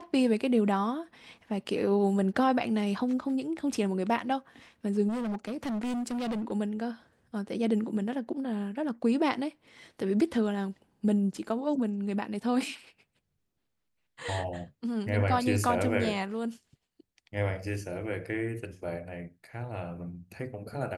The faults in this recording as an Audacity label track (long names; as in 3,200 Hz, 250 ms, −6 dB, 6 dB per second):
5.080000	6.520000	clipping −29.5 dBFS